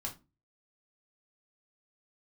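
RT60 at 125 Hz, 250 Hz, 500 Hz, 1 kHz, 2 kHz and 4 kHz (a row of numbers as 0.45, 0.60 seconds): 0.50, 0.40, 0.30, 0.25, 0.20, 0.20 seconds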